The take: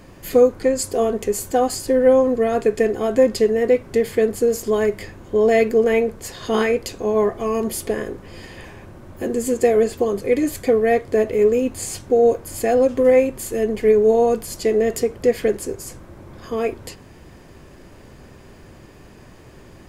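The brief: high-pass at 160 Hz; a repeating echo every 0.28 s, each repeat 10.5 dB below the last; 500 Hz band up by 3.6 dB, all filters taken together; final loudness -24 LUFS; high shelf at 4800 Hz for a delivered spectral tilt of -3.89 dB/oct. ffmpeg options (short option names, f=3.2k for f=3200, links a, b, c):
-af "highpass=160,equalizer=f=500:t=o:g=4,highshelf=f=4.8k:g=4.5,aecho=1:1:280|560|840:0.299|0.0896|0.0269,volume=-8.5dB"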